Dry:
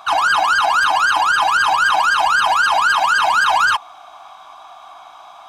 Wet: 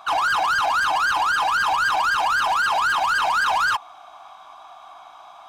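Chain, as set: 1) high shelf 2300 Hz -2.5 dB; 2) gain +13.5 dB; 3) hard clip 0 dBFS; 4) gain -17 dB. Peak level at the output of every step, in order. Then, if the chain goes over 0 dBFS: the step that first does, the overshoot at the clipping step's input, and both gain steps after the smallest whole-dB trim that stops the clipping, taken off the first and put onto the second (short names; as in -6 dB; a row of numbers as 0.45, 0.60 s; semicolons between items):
-6.0, +7.5, 0.0, -17.0 dBFS; step 2, 7.5 dB; step 2 +5.5 dB, step 4 -9 dB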